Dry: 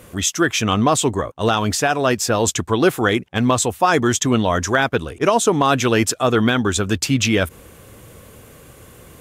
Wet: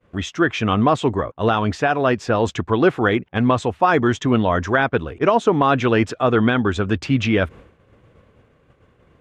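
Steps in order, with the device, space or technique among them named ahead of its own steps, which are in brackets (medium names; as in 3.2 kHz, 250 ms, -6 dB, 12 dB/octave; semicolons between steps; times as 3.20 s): hearing-loss simulation (low-pass 2.5 kHz 12 dB/octave; expander -35 dBFS)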